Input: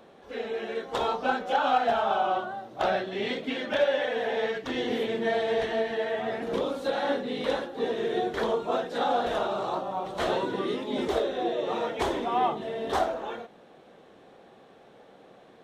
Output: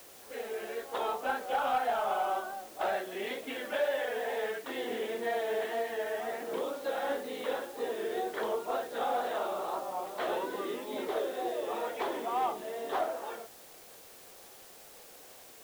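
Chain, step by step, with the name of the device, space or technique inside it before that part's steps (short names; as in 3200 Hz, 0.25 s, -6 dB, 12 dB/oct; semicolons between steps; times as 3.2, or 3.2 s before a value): tape answering machine (BPF 350–3100 Hz; soft clip -17 dBFS, distortion -22 dB; wow and flutter; white noise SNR 19 dB); gain -4 dB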